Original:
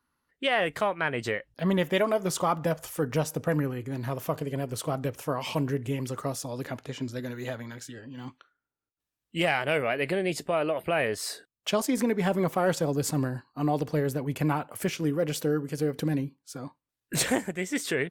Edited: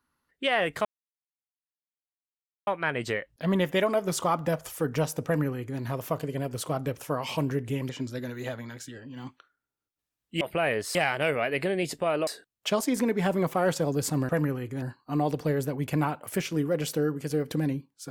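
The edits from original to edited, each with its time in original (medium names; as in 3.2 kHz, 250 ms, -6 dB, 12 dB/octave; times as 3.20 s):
0.85 s: insert silence 1.82 s
3.44–3.97 s: copy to 13.30 s
6.07–6.90 s: delete
10.74–11.28 s: move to 9.42 s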